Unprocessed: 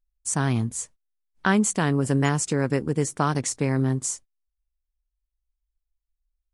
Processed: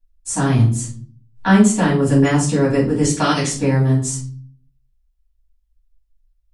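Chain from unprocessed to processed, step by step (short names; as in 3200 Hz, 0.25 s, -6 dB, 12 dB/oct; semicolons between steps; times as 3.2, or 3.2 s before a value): 3.03–3.46 weighting filter D; reverb RT60 0.45 s, pre-delay 3 ms, DRR -9.5 dB; gain -7 dB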